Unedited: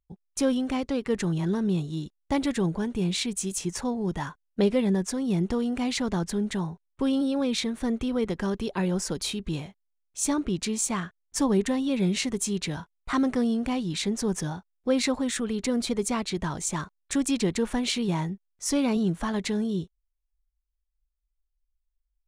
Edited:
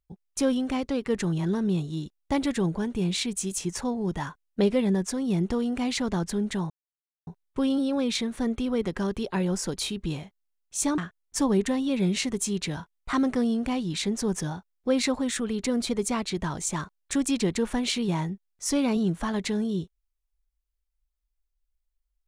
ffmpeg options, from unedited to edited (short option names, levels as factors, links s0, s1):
-filter_complex "[0:a]asplit=3[s0][s1][s2];[s0]atrim=end=6.7,asetpts=PTS-STARTPTS,afade=t=out:st=6.696:d=0.004:c=hsin,apad=pad_dur=0.57[s3];[s1]atrim=start=6.7:end=10.412,asetpts=PTS-STARTPTS,afade=t=in:d=0.004:c=hsin[s4];[s2]atrim=start=10.978[s5];[s3][s4]concat=n=2:v=0:a=1[s6];[s6][s5]acrossfade=d=0.004:c1=hsin:c2=hsin"